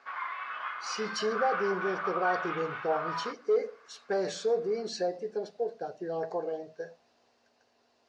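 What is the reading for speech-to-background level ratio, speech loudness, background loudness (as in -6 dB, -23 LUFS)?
2.0 dB, -33.0 LUFS, -35.0 LUFS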